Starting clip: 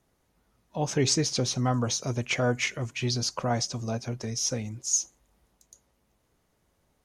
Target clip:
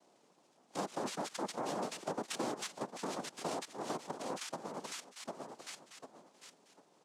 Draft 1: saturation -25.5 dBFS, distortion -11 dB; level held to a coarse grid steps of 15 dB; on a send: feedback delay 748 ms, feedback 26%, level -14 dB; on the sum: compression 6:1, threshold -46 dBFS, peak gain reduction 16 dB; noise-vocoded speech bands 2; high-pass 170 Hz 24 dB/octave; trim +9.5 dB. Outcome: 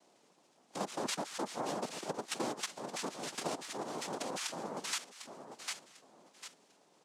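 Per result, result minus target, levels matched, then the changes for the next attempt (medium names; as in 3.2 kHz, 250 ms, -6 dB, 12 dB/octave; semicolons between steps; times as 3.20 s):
saturation: distortion +8 dB; 4 kHz band +2.5 dB
change: saturation -18.5 dBFS, distortion -19 dB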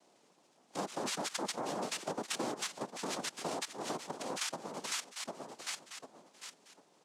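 4 kHz band +3.5 dB
add after compression: treble shelf 3 kHz -9.5 dB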